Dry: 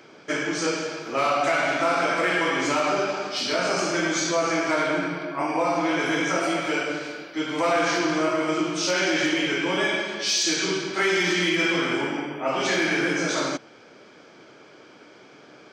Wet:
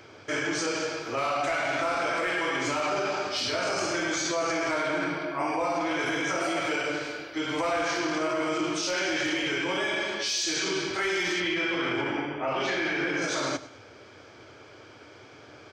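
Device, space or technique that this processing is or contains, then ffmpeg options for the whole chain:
car stereo with a boomy subwoofer: -filter_complex "[0:a]asettb=1/sr,asplit=3[a][b][c];[a]atrim=end=11.404[d];[b]atrim=start=11.4:end=13.22,asetpts=PTS-STARTPTS,afade=t=in:d=0.004:c=qsin,afade=t=out:st=1.816:d=0.004:c=qsin,lowpass=4.1k[e];[c]atrim=start=13.216[f];[d][e]acrossfade=d=0.004:c1=hsin:c2=qsin[g];[g][f]acrossfade=d=0.004:c1=qsin:c2=hsin,lowshelf=f=130:t=q:w=3:g=9,aecho=1:1:101|202|303:0.126|0.0504|0.0201,alimiter=limit=-20dB:level=0:latency=1:release=28"

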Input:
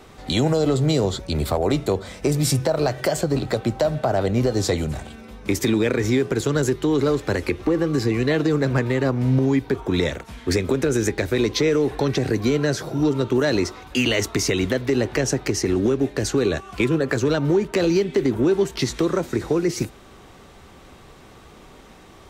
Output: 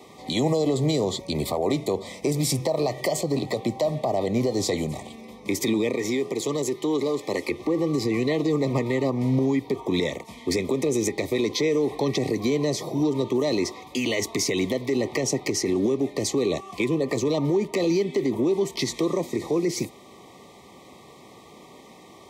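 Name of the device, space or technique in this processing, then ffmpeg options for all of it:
PA system with an anti-feedback notch: -filter_complex "[0:a]highpass=160,asuperstop=centerf=1500:order=20:qfactor=2.5,alimiter=limit=-15dB:level=0:latency=1:release=49,asettb=1/sr,asplit=3[a][b][c];[a]atrim=end=5.954[d];[b]atrim=start=5.95:end=7.51,asetpts=PTS-STARTPTS,afade=t=in:d=0.004:c=qsin,afade=t=out:st=1.556:d=0.004:c=qsin,highpass=f=250:p=1[e];[c]atrim=start=7.506[f];[d][e]acrossfade=d=0.004:c1=hsin:c2=qsin[g];[g][f]acrossfade=d=0.004:c1=qsin:c2=hsin,bandreject=f=2.8k:w=9.1"

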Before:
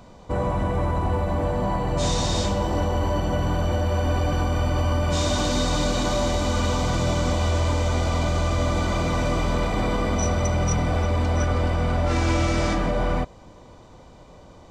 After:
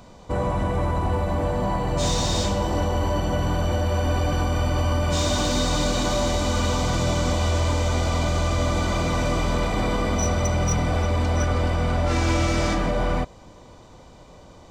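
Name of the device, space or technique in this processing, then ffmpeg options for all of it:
exciter from parts: -filter_complex "[0:a]asplit=2[a][b];[b]highpass=f=3.9k:p=1,asoftclip=type=tanh:threshold=-36dB,volume=-4dB[c];[a][c]amix=inputs=2:normalize=0"

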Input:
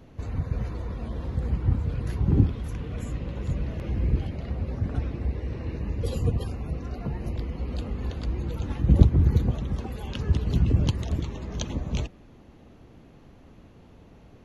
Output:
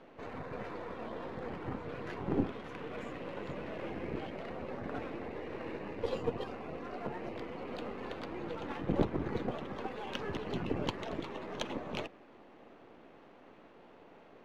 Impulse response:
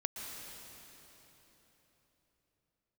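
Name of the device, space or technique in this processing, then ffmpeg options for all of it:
crystal radio: -af "highpass=400,lowpass=2.6k,aeval=exprs='if(lt(val(0),0),0.447*val(0),val(0))':c=same,volume=4.5dB"

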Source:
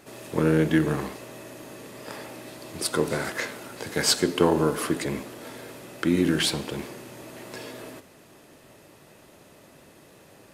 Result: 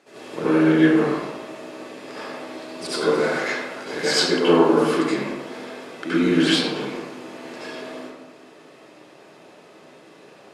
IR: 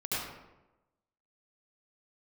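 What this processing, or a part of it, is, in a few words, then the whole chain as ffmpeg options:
supermarket ceiling speaker: -filter_complex "[0:a]highpass=270,lowpass=6.4k[a];[1:a]atrim=start_sample=2205[b];[a][b]afir=irnorm=-1:irlink=0"

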